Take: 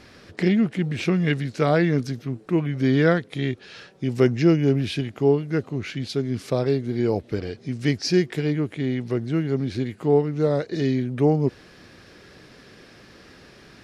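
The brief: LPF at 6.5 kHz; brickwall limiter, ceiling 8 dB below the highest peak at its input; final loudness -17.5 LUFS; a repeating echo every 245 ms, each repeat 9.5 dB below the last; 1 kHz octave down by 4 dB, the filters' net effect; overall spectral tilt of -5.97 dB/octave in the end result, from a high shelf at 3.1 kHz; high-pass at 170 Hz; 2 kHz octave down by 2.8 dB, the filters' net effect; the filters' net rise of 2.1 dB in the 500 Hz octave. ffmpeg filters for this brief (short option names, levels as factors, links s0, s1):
-af "highpass=170,lowpass=6500,equalizer=f=500:t=o:g=4.5,equalizer=f=1000:t=o:g=-9,equalizer=f=2000:t=o:g=-3,highshelf=f=3100:g=6.5,alimiter=limit=0.211:level=0:latency=1,aecho=1:1:245|490|735|980:0.335|0.111|0.0365|0.012,volume=2.24"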